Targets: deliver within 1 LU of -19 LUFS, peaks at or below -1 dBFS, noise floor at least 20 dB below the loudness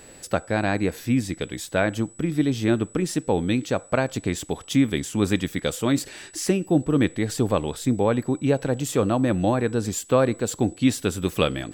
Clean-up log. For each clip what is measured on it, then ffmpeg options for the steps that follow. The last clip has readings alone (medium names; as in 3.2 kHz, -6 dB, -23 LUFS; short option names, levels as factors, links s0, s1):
steady tone 7.9 kHz; tone level -48 dBFS; loudness -24.0 LUFS; peak level -4.5 dBFS; loudness target -19.0 LUFS
-> -af "bandreject=f=7900:w=30"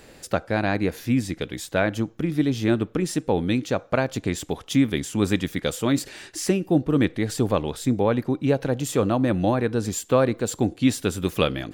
steady tone not found; loudness -24.0 LUFS; peak level -4.5 dBFS; loudness target -19.0 LUFS
-> -af "volume=1.78,alimiter=limit=0.891:level=0:latency=1"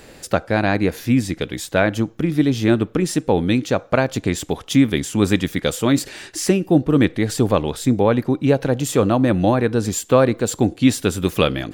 loudness -19.0 LUFS; peak level -1.0 dBFS; noise floor -44 dBFS